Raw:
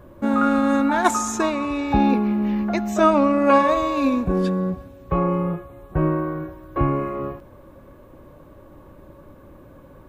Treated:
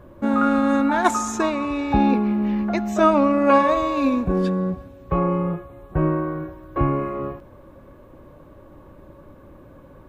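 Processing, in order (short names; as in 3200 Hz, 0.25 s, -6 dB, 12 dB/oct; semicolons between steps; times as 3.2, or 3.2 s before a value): high shelf 6600 Hz -5.5 dB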